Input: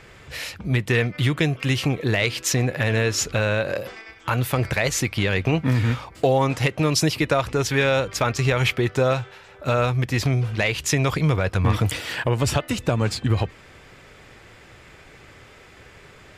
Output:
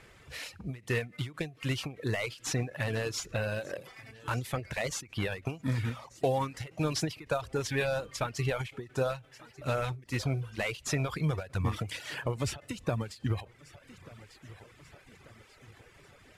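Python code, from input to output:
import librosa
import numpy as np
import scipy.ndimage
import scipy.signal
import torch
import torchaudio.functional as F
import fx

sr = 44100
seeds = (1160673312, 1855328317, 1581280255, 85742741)

p1 = fx.cvsd(x, sr, bps=64000)
p2 = p1 + fx.echo_feedback(p1, sr, ms=1188, feedback_pct=50, wet_db=-20, dry=0)
p3 = fx.rev_schroeder(p2, sr, rt60_s=1.0, comb_ms=26, drr_db=19.5)
p4 = fx.dereverb_blind(p3, sr, rt60_s=0.8)
p5 = fx.end_taper(p4, sr, db_per_s=190.0)
y = p5 * 10.0 ** (-8.5 / 20.0)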